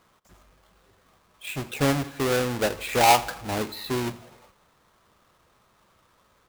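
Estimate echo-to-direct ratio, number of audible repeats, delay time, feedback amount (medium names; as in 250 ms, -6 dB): -18.0 dB, 3, 84 ms, 53%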